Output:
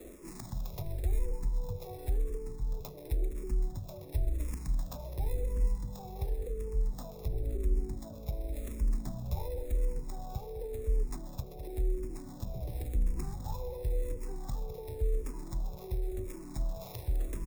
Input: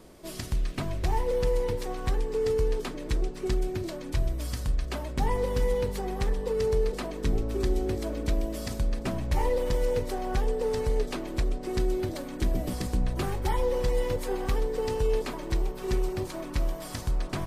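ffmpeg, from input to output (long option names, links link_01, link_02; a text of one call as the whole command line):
ffmpeg -i in.wav -filter_complex "[0:a]acrossover=split=200|1200[link_01][link_02][link_03];[link_03]acrusher=samples=29:mix=1:aa=0.000001[link_04];[link_01][link_02][link_04]amix=inputs=3:normalize=0,acrossover=split=130[link_05][link_06];[link_06]acompressor=threshold=-44dB:ratio=3[link_07];[link_05][link_07]amix=inputs=2:normalize=0,bass=frequency=250:gain=-1,treble=frequency=4000:gain=7,areverse,acompressor=mode=upward:threshold=-38dB:ratio=2.5,areverse,highshelf=frequency=5800:gain=10.5,aecho=1:1:205:0.266,asplit=2[link_08][link_09];[link_09]afreqshift=-0.93[link_10];[link_08][link_10]amix=inputs=2:normalize=1" out.wav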